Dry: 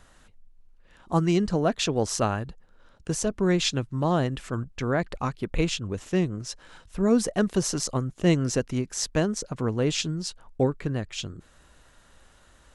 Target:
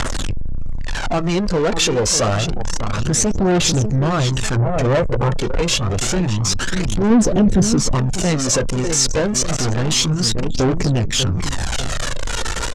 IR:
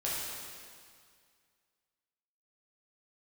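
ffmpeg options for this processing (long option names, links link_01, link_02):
-filter_complex "[0:a]aeval=exprs='val(0)+0.5*0.0562*sgn(val(0))':channel_layout=same,asplit=2[link_01][link_02];[link_02]aecho=0:1:595|1190|1785|2380|2975|3570:0.355|0.174|0.0852|0.0417|0.0205|0.01[link_03];[link_01][link_03]amix=inputs=2:normalize=0,aphaser=in_gain=1:out_gain=1:delay=2.3:decay=0.49:speed=0.28:type=triangular,asettb=1/sr,asplit=3[link_04][link_05][link_06];[link_04]atrim=end=4.564[link_07];[link_05]atrim=start=4.56:end=5.32,asetpts=PTS-STARTPTS,afade=type=in:duration=0.004:curve=qsin,afade=type=out:start_time=0.756:duration=0.004:curve=qsin,equalizer=frequency=125:width_type=o:width=1:gain=9,equalizer=frequency=500:width_type=o:width=1:gain=8,equalizer=frequency=4000:width_type=o:width=1:gain=-10[link_08];[link_06]atrim=start=5.316[link_09];[link_07][link_08]acrossfade=duration=0.004:curve1=hsin:curve2=qsin[link_10];[link_10][link_09]acrossfade=duration=0.004:curve1=qsin:curve2=hsin,flanger=delay=8:depth=3.4:regen=-52:speed=1:shape=sinusoidal,asplit=2[link_11][link_12];[link_12]acompressor=threshold=-34dB:ratio=6,volume=-2.5dB[link_13];[link_11][link_13]amix=inputs=2:normalize=0,asplit=3[link_14][link_15][link_16];[link_14]afade=type=out:start_time=9.47:duration=0.02[link_17];[link_15]aeval=exprs='0.211*(cos(1*acos(clip(val(0)/0.211,-1,1)))-cos(1*PI/2))+0.0237*(cos(4*acos(clip(val(0)/0.211,-1,1)))-cos(4*PI/2))+0.0531*(cos(6*acos(clip(val(0)/0.211,-1,1)))-cos(6*PI/2))':channel_layout=same,afade=type=in:start_time=9.47:duration=0.02,afade=type=out:start_time=9.95:duration=0.02[link_18];[link_16]afade=type=in:start_time=9.95:duration=0.02[link_19];[link_17][link_18][link_19]amix=inputs=3:normalize=0,asoftclip=type=tanh:threshold=-21.5dB,lowpass=frequency=7400:width_type=q:width=1.5,acontrast=50,asettb=1/sr,asplit=3[link_20][link_21][link_22];[link_20]atrim=end=7.104[link_23];[link_21]atrim=start=7.1:end=7.95,asetpts=PTS-STARTPTS,afade=type=in:duration=0.004:curve=qsin,afade=type=out:start_time=0.846:duration=0.004:curve=qsin,tiltshelf=frequency=700:gain=5[link_24];[link_22]atrim=start=7.946[link_25];[link_23][link_24]acrossfade=duration=0.004:curve1=hsin:curve2=qsin[link_26];[link_26][link_25]acrossfade=duration=0.004:curve1=qsin:curve2=hsin,anlmdn=398,volume=3dB"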